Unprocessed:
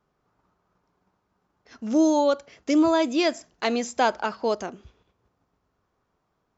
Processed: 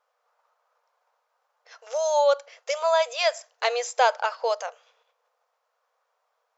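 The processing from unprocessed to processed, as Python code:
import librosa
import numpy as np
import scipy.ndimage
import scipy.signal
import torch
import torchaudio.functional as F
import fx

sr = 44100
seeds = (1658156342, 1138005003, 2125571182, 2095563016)

y = fx.brickwall_highpass(x, sr, low_hz=450.0)
y = y * librosa.db_to_amplitude(2.0)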